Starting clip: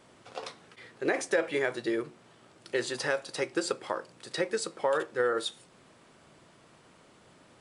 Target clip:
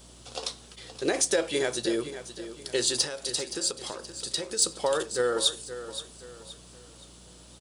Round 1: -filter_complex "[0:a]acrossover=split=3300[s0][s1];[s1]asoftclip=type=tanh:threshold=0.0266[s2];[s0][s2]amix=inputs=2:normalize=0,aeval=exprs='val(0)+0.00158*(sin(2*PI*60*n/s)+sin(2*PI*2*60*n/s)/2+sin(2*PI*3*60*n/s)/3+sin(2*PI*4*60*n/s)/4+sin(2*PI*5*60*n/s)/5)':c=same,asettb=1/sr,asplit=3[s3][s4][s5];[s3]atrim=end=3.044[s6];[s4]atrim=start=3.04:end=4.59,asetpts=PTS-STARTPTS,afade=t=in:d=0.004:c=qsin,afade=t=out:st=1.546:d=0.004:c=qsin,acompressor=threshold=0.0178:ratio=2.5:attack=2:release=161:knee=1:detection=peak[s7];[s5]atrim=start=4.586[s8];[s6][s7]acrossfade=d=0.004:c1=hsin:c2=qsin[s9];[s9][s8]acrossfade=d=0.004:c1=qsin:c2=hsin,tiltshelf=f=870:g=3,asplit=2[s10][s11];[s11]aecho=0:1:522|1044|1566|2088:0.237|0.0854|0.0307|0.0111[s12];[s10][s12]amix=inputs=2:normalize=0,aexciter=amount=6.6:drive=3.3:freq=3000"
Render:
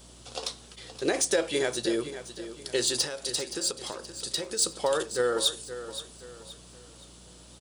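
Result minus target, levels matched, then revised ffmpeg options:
saturation: distortion +11 dB
-filter_complex "[0:a]acrossover=split=3300[s0][s1];[s1]asoftclip=type=tanh:threshold=0.0668[s2];[s0][s2]amix=inputs=2:normalize=0,aeval=exprs='val(0)+0.00158*(sin(2*PI*60*n/s)+sin(2*PI*2*60*n/s)/2+sin(2*PI*3*60*n/s)/3+sin(2*PI*4*60*n/s)/4+sin(2*PI*5*60*n/s)/5)':c=same,asettb=1/sr,asplit=3[s3][s4][s5];[s3]atrim=end=3.044[s6];[s4]atrim=start=3.04:end=4.59,asetpts=PTS-STARTPTS,afade=t=in:d=0.004:c=qsin,afade=t=out:st=1.546:d=0.004:c=qsin,acompressor=threshold=0.0178:ratio=2.5:attack=2:release=161:knee=1:detection=peak[s7];[s5]atrim=start=4.586[s8];[s6][s7]acrossfade=d=0.004:c1=hsin:c2=qsin[s9];[s9][s8]acrossfade=d=0.004:c1=qsin:c2=hsin,tiltshelf=f=870:g=3,asplit=2[s10][s11];[s11]aecho=0:1:522|1044|1566|2088:0.237|0.0854|0.0307|0.0111[s12];[s10][s12]amix=inputs=2:normalize=0,aexciter=amount=6.6:drive=3.3:freq=3000"

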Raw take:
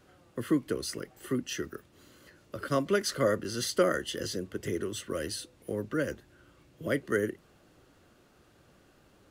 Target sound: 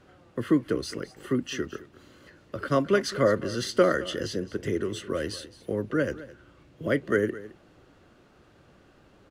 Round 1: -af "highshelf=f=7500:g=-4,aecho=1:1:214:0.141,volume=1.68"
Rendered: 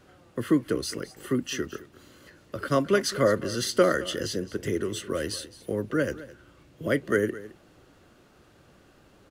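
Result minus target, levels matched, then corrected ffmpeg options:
8 kHz band +5.0 dB
-af "highshelf=f=7500:g=-16,aecho=1:1:214:0.141,volume=1.68"

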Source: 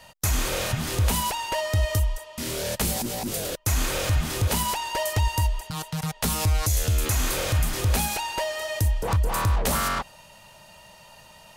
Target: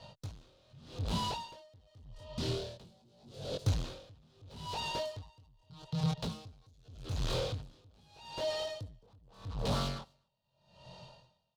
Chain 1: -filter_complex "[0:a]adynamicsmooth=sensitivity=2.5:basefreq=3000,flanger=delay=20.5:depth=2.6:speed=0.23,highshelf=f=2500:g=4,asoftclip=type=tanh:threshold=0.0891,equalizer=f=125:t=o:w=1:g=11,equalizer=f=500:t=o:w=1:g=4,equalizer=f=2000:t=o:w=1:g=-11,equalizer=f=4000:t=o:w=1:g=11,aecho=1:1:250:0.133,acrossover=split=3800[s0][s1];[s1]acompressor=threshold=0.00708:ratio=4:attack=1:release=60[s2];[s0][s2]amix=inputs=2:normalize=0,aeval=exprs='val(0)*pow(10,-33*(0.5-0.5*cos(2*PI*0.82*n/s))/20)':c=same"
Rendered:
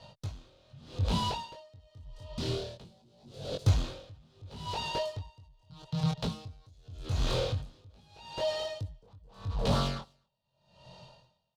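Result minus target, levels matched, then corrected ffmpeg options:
saturation: distortion -9 dB
-filter_complex "[0:a]adynamicsmooth=sensitivity=2.5:basefreq=3000,flanger=delay=20.5:depth=2.6:speed=0.23,highshelf=f=2500:g=4,asoftclip=type=tanh:threshold=0.0282,equalizer=f=125:t=o:w=1:g=11,equalizer=f=500:t=o:w=1:g=4,equalizer=f=2000:t=o:w=1:g=-11,equalizer=f=4000:t=o:w=1:g=11,aecho=1:1:250:0.133,acrossover=split=3800[s0][s1];[s1]acompressor=threshold=0.00708:ratio=4:attack=1:release=60[s2];[s0][s2]amix=inputs=2:normalize=0,aeval=exprs='val(0)*pow(10,-33*(0.5-0.5*cos(2*PI*0.82*n/s))/20)':c=same"

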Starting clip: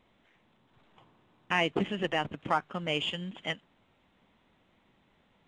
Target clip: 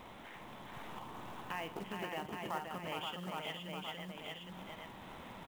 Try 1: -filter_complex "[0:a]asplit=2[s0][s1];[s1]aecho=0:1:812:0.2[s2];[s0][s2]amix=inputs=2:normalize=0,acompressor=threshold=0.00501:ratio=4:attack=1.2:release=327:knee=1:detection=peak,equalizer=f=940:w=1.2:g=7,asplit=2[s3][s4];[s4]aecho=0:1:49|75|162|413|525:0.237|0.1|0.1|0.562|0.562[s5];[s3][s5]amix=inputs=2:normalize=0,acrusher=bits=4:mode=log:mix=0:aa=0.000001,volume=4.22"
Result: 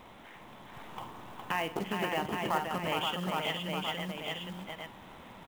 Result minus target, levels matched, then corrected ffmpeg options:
compression: peak gain reduction -9 dB
-filter_complex "[0:a]asplit=2[s0][s1];[s1]aecho=0:1:812:0.2[s2];[s0][s2]amix=inputs=2:normalize=0,acompressor=threshold=0.00126:ratio=4:attack=1.2:release=327:knee=1:detection=peak,equalizer=f=940:w=1.2:g=7,asplit=2[s3][s4];[s4]aecho=0:1:49|75|162|413|525:0.237|0.1|0.1|0.562|0.562[s5];[s3][s5]amix=inputs=2:normalize=0,acrusher=bits=4:mode=log:mix=0:aa=0.000001,volume=4.22"

